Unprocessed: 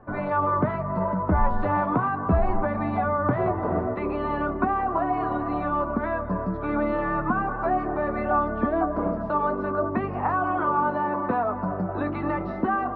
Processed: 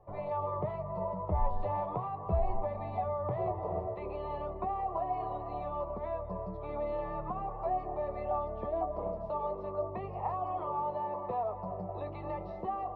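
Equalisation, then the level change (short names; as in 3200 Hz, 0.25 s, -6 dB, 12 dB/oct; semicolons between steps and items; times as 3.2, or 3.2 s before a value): fixed phaser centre 630 Hz, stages 4; -7.0 dB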